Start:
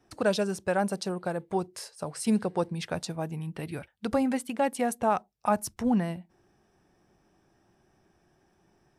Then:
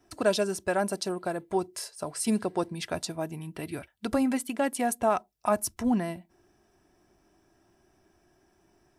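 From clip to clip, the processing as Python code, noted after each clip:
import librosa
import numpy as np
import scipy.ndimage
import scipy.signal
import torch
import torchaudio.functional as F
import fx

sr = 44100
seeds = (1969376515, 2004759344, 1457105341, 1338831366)

y = fx.high_shelf(x, sr, hz=7600.0, db=6.5)
y = y + 0.41 * np.pad(y, (int(3.0 * sr / 1000.0), 0))[:len(y)]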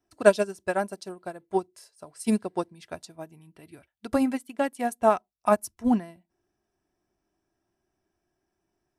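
y = fx.upward_expand(x, sr, threshold_db=-34.0, expansion=2.5)
y = F.gain(torch.from_numpy(y), 8.5).numpy()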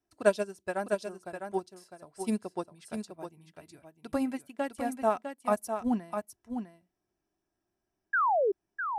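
y = fx.spec_paint(x, sr, seeds[0], shape='fall', start_s=8.13, length_s=0.39, low_hz=370.0, high_hz=1700.0, level_db=-19.0)
y = y + 10.0 ** (-7.0 / 20.0) * np.pad(y, (int(654 * sr / 1000.0), 0))[:len(y)]
y = F.gain(torch.from_numpy(y), -6.5).numpy()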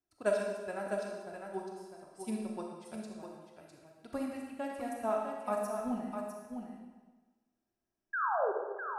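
y = fx.rev_freeverb(x, sr, rt60_s=1.3, hf_ratio=0.95, predelay_ms=0, drr_db=0.0)
y = F.gain(torch.from_numpy(y), -8.0).numpy()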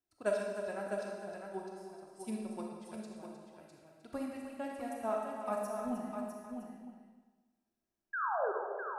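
y = x + 10.0 ** (-10.0 / 20.0) * np.pad(x, (int(309 * sr / 1000.0), 0))[:len(x)]
y = F.gain(torch.from_numpy(y), -2.5).numpy()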